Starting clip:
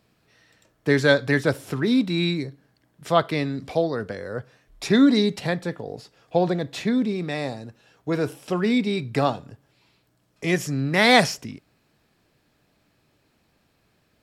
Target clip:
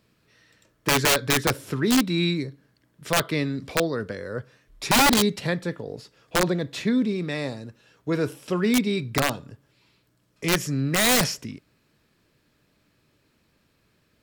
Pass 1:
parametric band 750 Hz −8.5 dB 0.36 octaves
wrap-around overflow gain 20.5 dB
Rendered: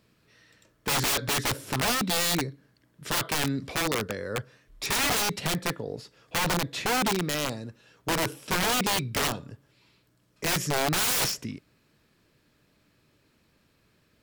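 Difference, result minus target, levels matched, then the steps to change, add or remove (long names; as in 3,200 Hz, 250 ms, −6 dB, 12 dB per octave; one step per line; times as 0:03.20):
wrap-around overflow: distortion +15 dB
change: wrap-around overflow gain 13 dB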